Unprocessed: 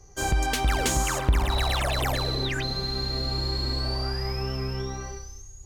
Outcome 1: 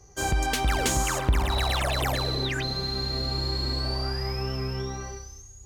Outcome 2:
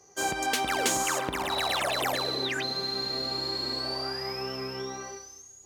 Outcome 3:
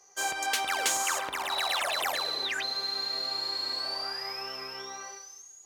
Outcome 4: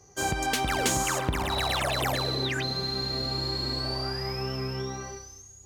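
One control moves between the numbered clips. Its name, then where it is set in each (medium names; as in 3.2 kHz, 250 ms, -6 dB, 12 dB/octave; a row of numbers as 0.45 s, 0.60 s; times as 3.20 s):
high-pass, cutoff frequency: 42 Hz, 270 Hz, 730 Hz, 110 Hz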